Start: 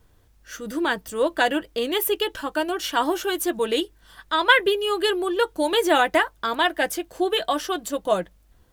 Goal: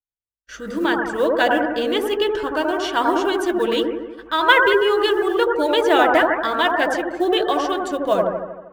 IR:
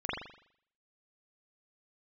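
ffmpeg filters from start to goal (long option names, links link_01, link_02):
-filter_complex "[0:a]agate=range=-51dB:threshold=-47dB:ratio=16:detection=peak,lowpass=5100,acrusher=bits=8:mode=log:mix=0:aa=0.000001,asplit=2[link_01][link_02];[1:a]atrim=start_sample=2205,asetrate=23814,aresample=44100,highshelf=frequency=10000:gain=10.5[link_03];[link_02][link_03]afir=irnorm=-1:irlink=0,volume=-9dB[link_04];[link_01][link_04]amix=inputs=2:normalize=0,volume=-1dB"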